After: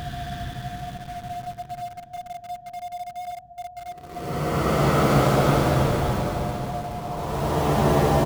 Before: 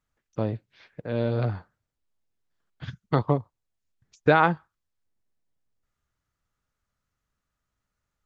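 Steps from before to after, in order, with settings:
sub-harmonics by changed cycles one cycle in 2, muted
on a send at −13.5 dB: convolution reverb RT60 0.40 s, pre-delay 6 ms
on the sum: steady tone 710 Hz −37 dBFS
extreme stretch with random phases 18×, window 0.10 s, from 0:02.87
multi-tap delay 331/831 ms −7/−10.5 dB
in parallel at −8 dB: bit-depth reduction 6 bits, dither none

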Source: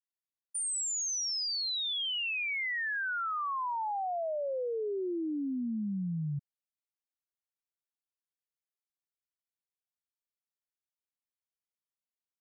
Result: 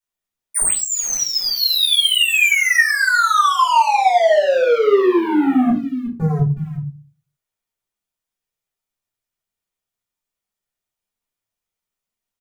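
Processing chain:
0:05.69–0:06.20: high-pass filter 1,400 Hz 24 dB per octave
single-tap delay 367 ms −18 dB
leveller curve on the samples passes 3
0:00.72–0:01.55: high-shelf EQ 4,200 Hz → 5,600 Hz −8 dB
rectangular room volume 140 cubic metres, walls furnished, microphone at 4.6 metres
level +6.5 dB

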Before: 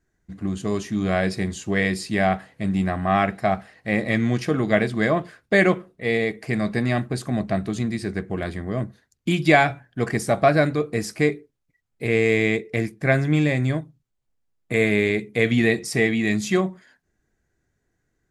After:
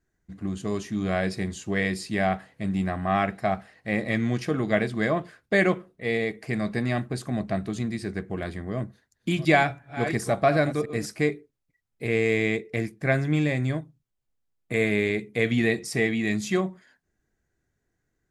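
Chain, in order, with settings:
0:08.75–0:11.06: delay that plays each chunk backwards 351 ms, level −12 dB
level −4 dB

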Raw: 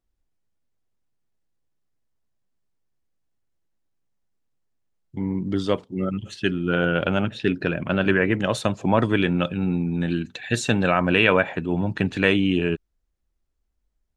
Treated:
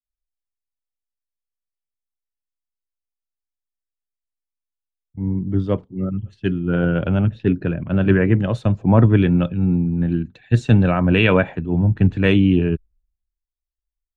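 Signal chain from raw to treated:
RIAA equalisation playback
multiband upward and downward expander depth 100%
level −2 dB

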